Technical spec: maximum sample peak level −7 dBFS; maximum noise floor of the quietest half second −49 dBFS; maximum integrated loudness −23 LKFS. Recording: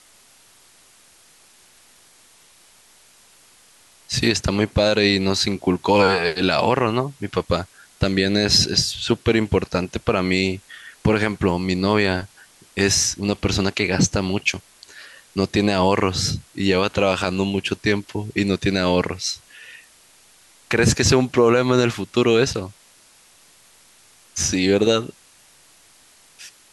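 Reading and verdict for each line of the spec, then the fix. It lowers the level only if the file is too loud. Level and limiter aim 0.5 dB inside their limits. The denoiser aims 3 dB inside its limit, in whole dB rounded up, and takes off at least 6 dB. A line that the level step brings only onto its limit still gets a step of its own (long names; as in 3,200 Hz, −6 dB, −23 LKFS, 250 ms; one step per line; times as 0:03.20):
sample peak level −4.5 dBFS: out of spec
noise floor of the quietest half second −53 dBFS: in spec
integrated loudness −20.0 LKFS: out of spec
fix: level −3.5 dB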